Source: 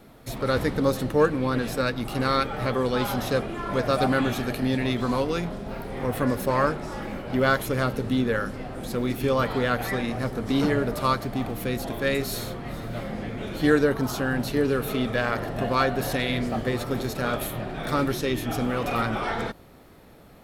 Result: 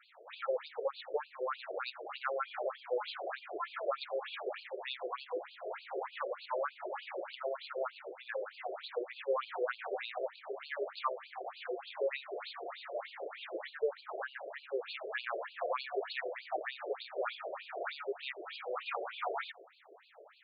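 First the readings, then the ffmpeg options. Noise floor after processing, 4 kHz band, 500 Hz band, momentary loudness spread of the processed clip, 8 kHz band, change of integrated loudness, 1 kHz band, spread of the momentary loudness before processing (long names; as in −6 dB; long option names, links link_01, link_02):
−59 dBFS, −11.5 dB, −11.5 dB, 6 LU, below −40 dB, −13.5 dB, −11.5 dB, 10 LU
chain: -af "acompressor=threshold=-28dB:ratio=6,afftfilt=real='re*between(b*sr/1024,480*pow(3500/480,0.5+0.5*sin(2*PI*3.3*pts/sr))/1.41,480*pow(3500/480,0.5+0.5*sin(2*PI*3.3*pts/sr))*1.41)':imag='im*between(b*sr/1024,480*pow(3500/480,0.5+0.5*sin(2*PI*3.3*pts/sr))/1.41,480*pow(3500/480,0.5+0.5*sin(2*PI*3.3*pts/sr))*1.41)':win_size=1024:overlap=0.75,volume=1.5dB"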